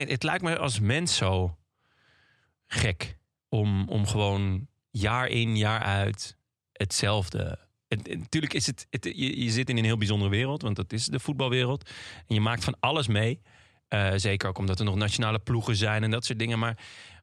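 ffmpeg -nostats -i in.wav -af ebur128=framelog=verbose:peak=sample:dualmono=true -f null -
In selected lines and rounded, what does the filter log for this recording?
Integrated loudness:
  I:         -24.7 LUFS
  Threshold: -35.3 LUFS
Loudness range:
  LRA:         2.5 LU
  Threshold: -45.4 LUFS
  LRA low:   -27.0 LUFS
  LRA high:  -24.5 LUFS
Sample peak:
  Peak:       -9.7 dBFS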